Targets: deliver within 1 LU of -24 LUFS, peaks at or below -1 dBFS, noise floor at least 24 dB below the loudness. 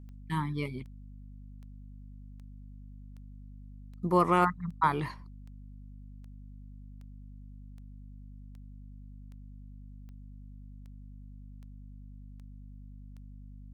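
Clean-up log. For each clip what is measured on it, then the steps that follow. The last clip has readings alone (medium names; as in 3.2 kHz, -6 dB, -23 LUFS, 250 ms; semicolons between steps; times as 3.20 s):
clicks found 18; hum 50 Hz; highest harmonic 250 Hz; hum level -45 dBFS; loudness -30.0 LUFS; peak level -11.0 dBFS; loudness target -24.0 LUFS
-> de-click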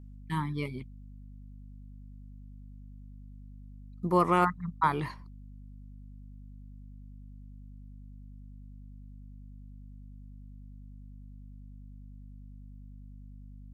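clicks found 0; hum 50 Hz; highest harmonic 250 Hz; hum level -45 dBFS
-> hum notches 50/100/150/200/250 Hz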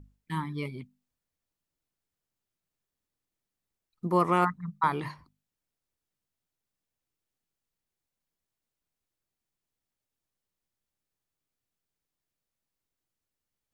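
hum not found; loudness -29.5 LUFS; peak level -11.0 dBFS; loudness target -24.0 LUFS
-> trim +5.5 dB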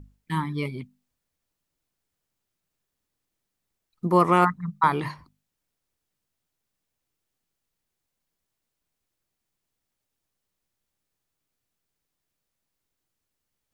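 loudness -24.0 LUFS; peak level -5.5 dBFS; noise floor -83 dBFS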